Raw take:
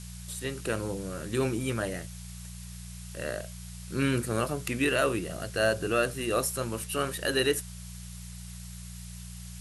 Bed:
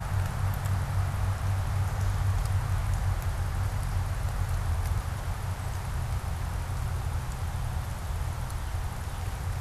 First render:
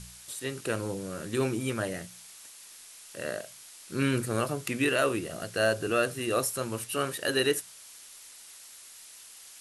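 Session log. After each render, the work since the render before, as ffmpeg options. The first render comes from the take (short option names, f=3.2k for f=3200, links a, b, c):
-af "bandreject=f=60:t=h:w=4,bandreject=f=120:t=h:w=4,bandreject=f=180:t=h:w=4"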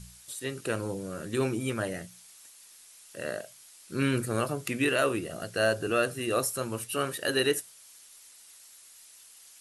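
-af "afftdn=nr=6:nf=-50"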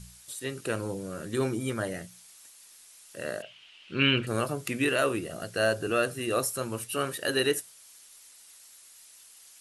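-filter_complex "[0:a]asettb=1/sr,asplit=3[a][b][c];[a]atrim=end=1.334[d];[b]atrim=start=1.33:end=1.91,asetpts=PTS-STARTPTS,afade=t=in:d=0.004:c=qsin,afade=t=out:st=0.576:d=0.004:c=qsin,bandreject=f=2.6k:w=5.9[e];[c]atrim=start=1.906[f];[d][e]acrossfade=d=0.004:c1=hsin:c2=qsin[g];[g][f]acrossfade=d=0.004:c1=qsin:c2=hsin,asettb=1/sr,asplit=3[h][i][j];[h]atrim=end=3.424[k];[i]atrim=start=3.42:end=4.27,asetpts=PTS-STARTPTS,afade=t=in:d=0.004:c=qsin,afade=t=out:st=0.846:d=0.004:c=qsin,lowpass=f=2.9k:t=q:w=7.4[l];[j]atrim=start=4.266[m];[k][l]acrossfade=d=0.004:c1=hsin:c2=qsin[n];[n][m]acrossfade=d=0.004:c1=qsin:c2=hsin"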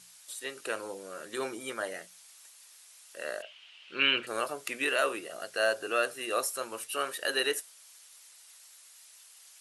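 -af "highpass=540,highshelf=f=9.4k:g=-4.5"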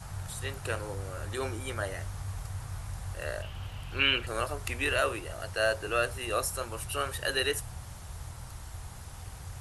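-filter_complex "[1:a]volume=-10.5dB[a];[0:a][a]amix=inputs=2:normalize=0"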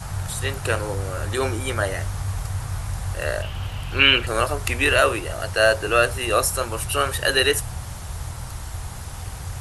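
-af "volume=10.5dB"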